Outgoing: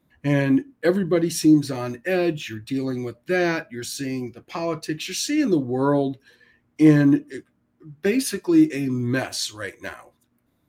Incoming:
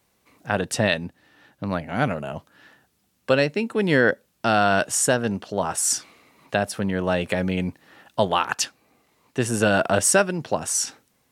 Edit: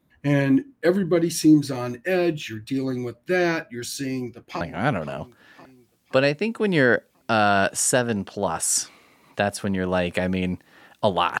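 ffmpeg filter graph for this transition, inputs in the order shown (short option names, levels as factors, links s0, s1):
-filter_complex "[0:a]apad=whole_dur=11.4,atrim=end=11.4,atrim=end=4.612[s0];[1:a]atrim=start=1.758:end=8.55[s1];[s0][s1]acrossfade=d=0.004:c1=hsin:c2=hsin,asplit=2[s2][s3];[s3]afade=t=in:st=4.02:d=0.01,afade=t=out:st=4.61:d=0.01,aecho=0:1:520|1040|1560|2080|2600|3120:0.199526|0.109739|0.0603567|0.0331962|0.0182579|0.0100418[s4];[s2][s4]amix=inputs=2:normalize=0"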